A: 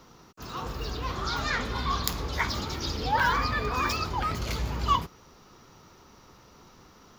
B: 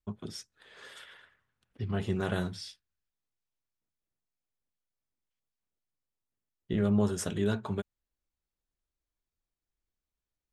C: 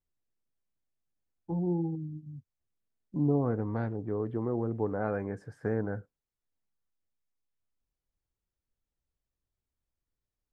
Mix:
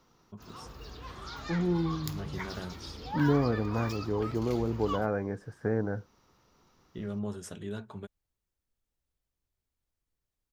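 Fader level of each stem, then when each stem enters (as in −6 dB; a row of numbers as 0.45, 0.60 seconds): −12.0, −9.0, +1.5 decibels; 0.00, 0.25, 0.00 seconds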